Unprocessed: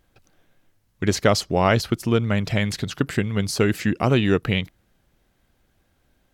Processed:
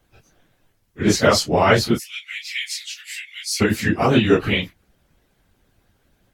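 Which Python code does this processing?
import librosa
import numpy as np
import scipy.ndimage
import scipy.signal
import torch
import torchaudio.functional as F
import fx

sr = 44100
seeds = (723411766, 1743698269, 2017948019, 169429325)

y = fx.phase_scramble(x, sr, seeds[0], window_ms=100)
y = fx.hpss(y, sr, part='percussive', gain_db=9)
y = fx.ellip_highpass(y, sr, hz=2100.0, order=4, stop_db=70, at=(1.98, 3.6), fade=0.02)
y = y * 10.0 ** (-2.5 / 20.0)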